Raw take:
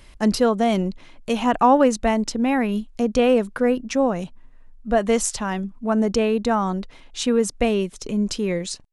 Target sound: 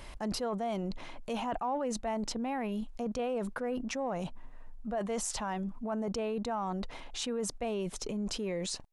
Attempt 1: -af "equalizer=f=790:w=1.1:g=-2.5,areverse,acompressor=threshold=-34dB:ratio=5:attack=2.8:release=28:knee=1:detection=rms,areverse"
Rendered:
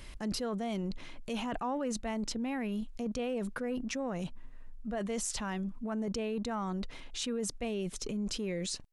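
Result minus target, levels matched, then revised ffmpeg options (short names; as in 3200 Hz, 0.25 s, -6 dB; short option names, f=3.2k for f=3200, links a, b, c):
1000 Hz band -3.5 dB
-af "equalizer=f=790:w=1.1:g=7.5,areverse,acompressor=threshold=-34dB:ratio=5:attack=2.8:release=28:knee=1:detection=rms,areverse"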